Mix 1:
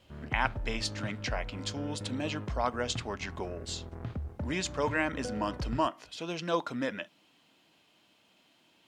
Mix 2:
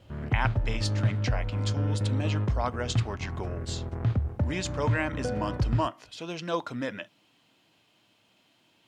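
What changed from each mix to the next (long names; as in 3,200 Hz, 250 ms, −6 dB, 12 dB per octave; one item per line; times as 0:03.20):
background +7.0 dB
master: add parametric band 110 Hz +9 dB 0.44 octaves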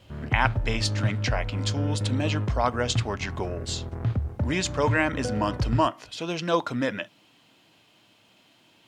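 speech +6.0 dB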